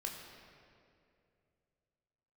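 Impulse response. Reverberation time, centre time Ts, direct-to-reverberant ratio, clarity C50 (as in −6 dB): 2.5 s, 74 ms, 0.0 dB, 3.5 dB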